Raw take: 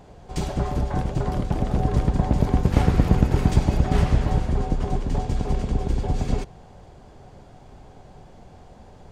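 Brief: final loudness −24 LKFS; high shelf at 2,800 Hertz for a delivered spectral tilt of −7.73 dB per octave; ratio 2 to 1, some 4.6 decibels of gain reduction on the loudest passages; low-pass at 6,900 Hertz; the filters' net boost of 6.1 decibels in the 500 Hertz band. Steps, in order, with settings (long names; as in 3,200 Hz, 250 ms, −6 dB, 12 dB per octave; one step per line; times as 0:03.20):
low-pass filter 6,900 Hz
parametric band 500 Hz +8 dB
high-shelf EQ 2,800 Hz −5.5 dB
downward compressor 2 to 1, threshold −20 dBFS
level +1.5 dB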